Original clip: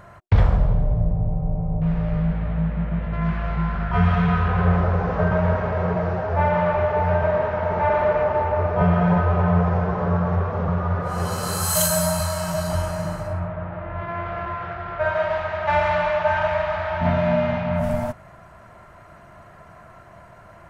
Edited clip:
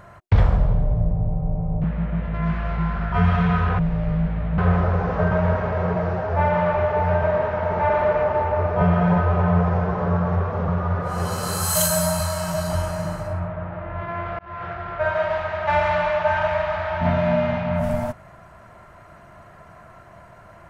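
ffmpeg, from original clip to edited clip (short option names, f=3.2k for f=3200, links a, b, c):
-filter_complex "[0:a]asplit=5[a][b][c][d][e];[a]atrim=end=1.842[f];[b]atrim=start=2.628:end=4.582[g];[c]atrim=start=1.838:end=2.632[h];[d]atrim=start=4.578:end=14.39,asetpts=PTS-STARTPTS,afade=t=out:st=9.808:d=0.004:c=hsin[i];[e]atrim=start=14.39,asetpts=PTS-STARTPTS,afade=t=in:d=0.26[j];[f][g]acrossfade=d=0.004:c1=hsin:c2=hsin[k];[k][h]acrossfade=d=0.004:c1=hsin:c2=hsin[l];[i][j]concat=n=2:v=0:a=1[m];[l][m]acrossfade=d=0.004:c1=hsin:c2=hsin"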